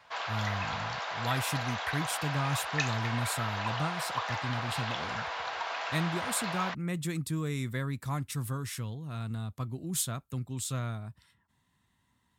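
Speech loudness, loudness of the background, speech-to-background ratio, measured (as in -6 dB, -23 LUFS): -35.0 LUFS, -34.5 LUFS, -0.5 dB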